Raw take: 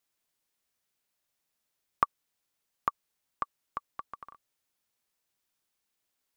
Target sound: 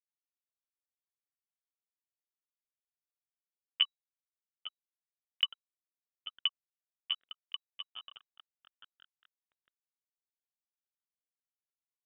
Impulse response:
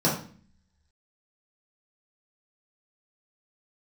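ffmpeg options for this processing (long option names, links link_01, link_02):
-filter_complex "[0:a]highpass=frequency=400:width=0.5412,highpass=frequency=400:width=1.3066,aemphasis=mode=reproduction:type=75fm,acrossover=split=740[link_01][link_02];[link_01]acompressor=threshold=-52dB:ratio=4[link_03];[link_03][link_02]amix=inputs=2:normalize=0,alimiter=limit=-15.5dB:level=0:latency=1:release=171,asplit=6[link_04][link_05][link_06][link_07][link_08][link_09];[link_05]adelay=450,afreqshift=-47,volume=-14dB[link_10];[link_06]adelay=900,afreqshift=-94,volume=-19.8dB[link_11];[link_07]adelay=1350,afreqshift=-141,volume=-25.7dB[link_12];[link_08]adelay=1800,afreqshift=-188,volume=-31.5dB[link_13];[link_09]adelay=2250,afreqshift=-235,volume=-37.4dB[link_14];[link_04][link_10][link_11][link_12][link_13][link_14]amix=inputs=6:normalize=0,aeval=exprs='sgn(val(0))*max(abs(val(0))-0.00355,0)':channel_layout=same,asetrate=35280,aresample=44100,crystalizer=i=6.5:c=0,atempo=0.66,lowpass=frequency=3300:width_type=q:width=0.5098,lowpass=frequency=3300:width_type=q:width=0.6013,lowpass=frequency=3300:width_type=q:width=0.9,lowpass=frequency=3300:width_type=q:width=2.563,afreqshift=-3900"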